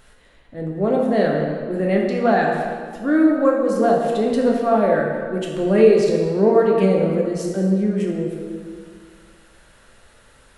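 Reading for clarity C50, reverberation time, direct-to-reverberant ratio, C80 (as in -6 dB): 1.5 dB, 1.9 s, -1.5 dB, 3.5 dB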